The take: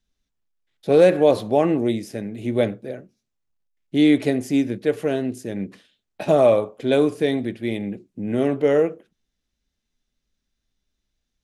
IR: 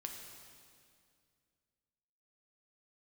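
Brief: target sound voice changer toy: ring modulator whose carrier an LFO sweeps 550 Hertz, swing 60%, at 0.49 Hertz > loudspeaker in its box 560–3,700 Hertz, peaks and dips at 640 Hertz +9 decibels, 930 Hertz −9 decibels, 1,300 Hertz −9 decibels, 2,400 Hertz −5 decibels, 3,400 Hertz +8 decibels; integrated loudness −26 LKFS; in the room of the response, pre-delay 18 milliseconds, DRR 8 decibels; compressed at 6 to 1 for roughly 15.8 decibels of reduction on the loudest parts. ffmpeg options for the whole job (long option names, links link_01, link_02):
-filter_complex "[0:a]acompressor=threshold=-28dB:ratio=6,asplit=2[link_01][link_02];[1:a]atrim=start_sample=2205,adelay=18[link_03];[link_02][link_03]afir=irnorm=-1:irlink=0,volume=-5.5dB[link_04];[link_01][link_04]amix=inputs=2:normalize=0,aeval=exprs='val(0)*sin(2*PI*550*n/s+550*0.6/0.49*sin(2*PI*0.49*n/s))':channel_layout=same,highpass=560,equalizer=frequency=640:width_type=q:width=4:gain=9,equalizer=frequency=930:width_type=q:width=4:gain=-9,equalizer=frequency=1300:width_type=q:width=4:gain=-9,equalizer=frequency=2400:width_type=q:width=4:gain=-5,equalizer=frequency=3400:width_type=q:width=4:gain=8,lowpass=frequency=3700:width=0.5412,lowpass=frequency=3700:width=1.3066,volume=11.5dB"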